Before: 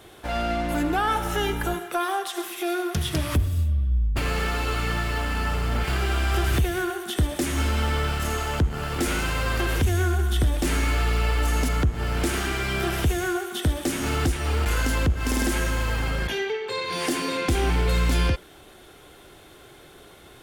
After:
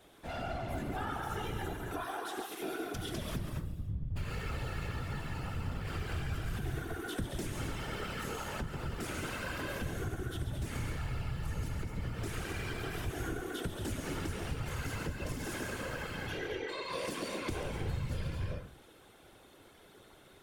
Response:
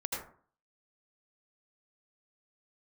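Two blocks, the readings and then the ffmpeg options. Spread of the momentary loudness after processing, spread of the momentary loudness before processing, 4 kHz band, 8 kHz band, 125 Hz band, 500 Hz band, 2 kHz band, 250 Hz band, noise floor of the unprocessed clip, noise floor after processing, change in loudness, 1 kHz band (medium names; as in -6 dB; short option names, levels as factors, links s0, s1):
3 LU, 4 LU, -14.0 dB, -14.0 dB, -12.5 dB, -12.0 dB, -13.0 dB, -12.5 dB, -49 dBFS, -59 dBFS, -13.5 dB, -13.5 dB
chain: -filter_complex "[0:a]asplit=2[s0][s1];[1:a]atrim=start_sample=2205,adelay=138[s2];[s1][s2]afir=irnorm=-1:irlink=0,volume=0.531[s3];[s0][s3]amix=inputs=2:normalize=0,acompressor=threshold=0.0794:ratio=5,afftfilt=real='hypot(re,im)*cos(2*PI*random(0))':imag='hypot(re,im)*sin(2*PI*random(1))':win_size=512:overlap=0.75,volume=0.501"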